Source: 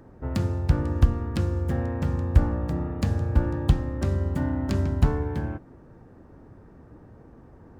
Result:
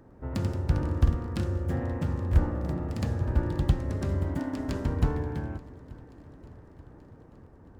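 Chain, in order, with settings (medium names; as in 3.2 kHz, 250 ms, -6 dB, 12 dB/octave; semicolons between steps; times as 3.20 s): 4.39–4.85 s: steep high-pass 220 Hz; shuffle delay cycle 882 ms, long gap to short 1.5:1, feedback 54%, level -21.5 dB; ever faster or slower copies 107 ms, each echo +1 st, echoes 2, each echo -6 dB; trim -4.5 dB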